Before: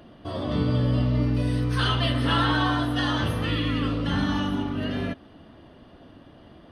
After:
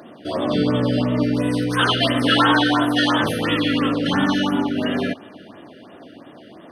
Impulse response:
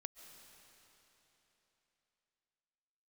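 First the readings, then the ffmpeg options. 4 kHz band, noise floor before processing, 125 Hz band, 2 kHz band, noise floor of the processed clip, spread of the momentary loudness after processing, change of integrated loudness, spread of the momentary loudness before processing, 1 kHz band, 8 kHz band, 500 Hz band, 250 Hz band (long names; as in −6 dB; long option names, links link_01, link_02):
+7.5 dB, −50 dBFS, −2.0 dB, +8.0 dB, −44 dBFS, 7 LU, +5.5 dB, 7 LU, +7.0 dB, +9.0 dB, +9.0 dB, +7.0 dB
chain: -filter_complex "[0:a]highpass=230,asplit=2[link_01][link_02];[1:a]atrim=start_sample=2205,highshelf=frequency=5200:gain=4[link_03];[link_02][link_03]afir=irnorm=-1:irlink=0,volume=-8.5dB[link_04];[link_01][link_04]amix=inputs=2:normalize=0,afftfilt=real='re*(1-between(b*sr/1024,890*pow(5400/890,0.5+0.5*sin(2*PI*2.9*pts/sr))/1.41,890*pow(5400/890,0.5+0.5*sin(2*PI*2.9*pts/sr))*1.41))':imag='im*(1-between(b*sr/1024,890*pow(5400/890,0.5+0.5*sin(2*PI*2.9*pts/sr))/1.41,890*pow(5400/890,0.5+0.5*sin(2*PI*2.9*pts/sr))*1.41))':win_size=1024:overlap=0.75,volume=7.5dB"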